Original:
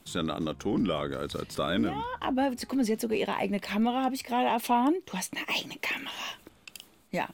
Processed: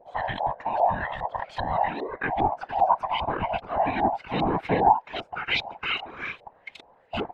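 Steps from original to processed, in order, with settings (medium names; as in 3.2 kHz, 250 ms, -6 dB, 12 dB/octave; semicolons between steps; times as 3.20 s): split-band scrambler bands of 500 Hz; LFO low-pass saw up 2.5 Hz 600–3700 Hz; whisper effect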